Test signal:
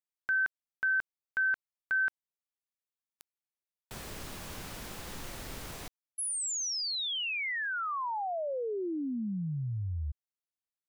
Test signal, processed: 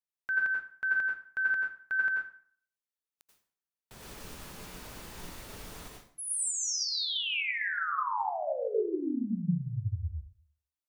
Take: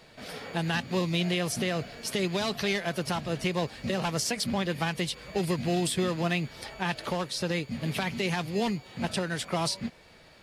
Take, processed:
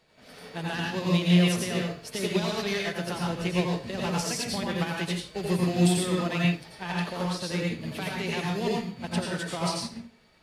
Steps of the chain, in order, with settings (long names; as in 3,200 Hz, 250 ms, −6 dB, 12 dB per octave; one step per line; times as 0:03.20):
dense smooth reverb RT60 0.53 s, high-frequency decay 0.8×, pre-delay 75 ms, DRR −2.5 dB
expander for the loud parts 1.5 to 1, over −39 dBFS